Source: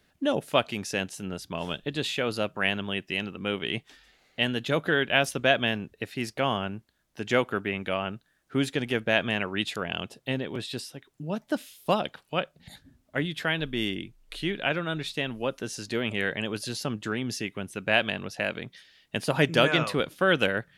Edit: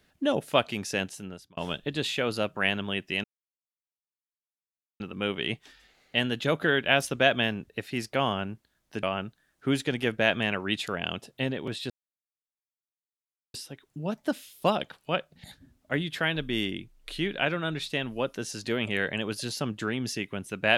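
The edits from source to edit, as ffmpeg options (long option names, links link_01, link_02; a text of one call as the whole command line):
ffmpeg -i in.wav -filter_complex "[0:a]asplit=5[link_01][link_02][link_03][link_04][link_05];[link_01]atrim=end=1.57,asetpts=PTS-STARTPTS,afade=type=out:start_time=1.04:duration=0.53[link_06];[link_02]atrim=start=1.57:end=3.24,asetpts=PTS-STARTPTS,afade=type=in:duration=0.004:curve=hsin,afade=type=out:start_time=1.666:duration=0.004:curve=hsin,apad=pad_dur=1.76[link_07];[link_03]atrim=start=3.24:end=7.272,asetpts=PTS-STARTPTS,afade=type=in:duration=0.004:curve=hsin[link_08];[link_04]atrim=start=7.908:end=10.78,asetpts=PTS-STARTPTS,afade=type=out:start_time=2.868:duration=0.004:curve=hsin,apad=pad_dur=1.64[link_09];[link_05]atrim=start=10.78,asetpts=PTS-STARTPTS,afade=type=in:duration=0.004:curve=hsin[link_10];[link_06][link_07][link_08]concat=n=3:v=0:a=1[link_11];[link_09][link_10]concat=n=2:v=0:a=1[link_12];[link_11][link_12]acrossfade=duration=0.004:curve1=hsin:curve2=hsin" out.wav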